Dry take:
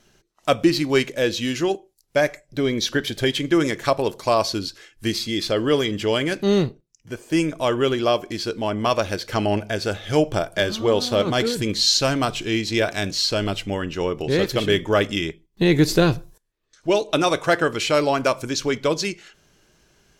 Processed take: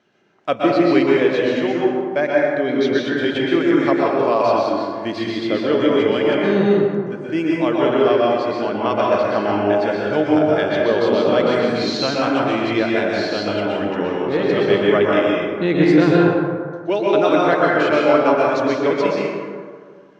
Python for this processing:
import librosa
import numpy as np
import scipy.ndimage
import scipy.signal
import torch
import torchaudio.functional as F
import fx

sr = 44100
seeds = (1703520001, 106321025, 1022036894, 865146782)

y = fx.bandpass_edges(x, sr, low_hz=190.0, high_hz=2600.0)
y = fx.rev_plate(y, sr, seeds[0], rt60_s=1.9, hf_ratio=0.4, predelay_ms=110, drr_db=-4.5)
y = F.gain(torch.from_numpy(y), -1.0).numpy()